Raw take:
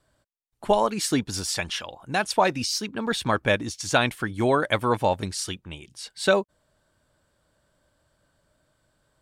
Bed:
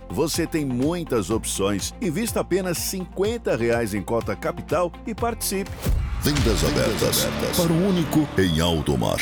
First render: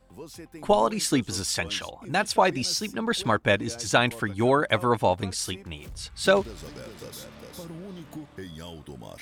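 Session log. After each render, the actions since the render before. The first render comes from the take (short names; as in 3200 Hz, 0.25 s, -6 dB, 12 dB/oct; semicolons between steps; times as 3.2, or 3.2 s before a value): add bed -20 dB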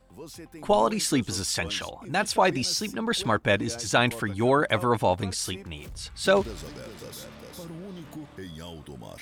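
transient shaper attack -2 dB, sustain +3 dB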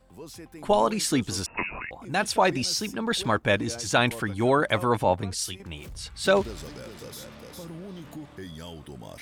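1.46–1.91 inverted band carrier 2700 Hz; 5.04–5.6 three-band expander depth 70%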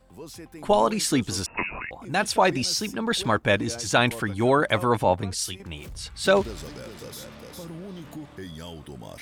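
gain +1.5 dB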